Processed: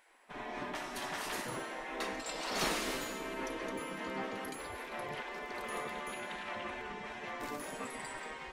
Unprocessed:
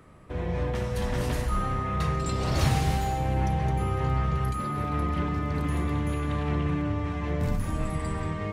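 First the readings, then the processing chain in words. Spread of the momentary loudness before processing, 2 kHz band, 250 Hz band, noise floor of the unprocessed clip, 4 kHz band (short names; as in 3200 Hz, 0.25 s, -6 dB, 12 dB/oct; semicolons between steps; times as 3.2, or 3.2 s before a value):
5 LU, -1.5 dB, -14.0 dB, -33 dBFS, -1.5 dB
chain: spectral gate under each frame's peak -15 dB weak; gain -1.5 dB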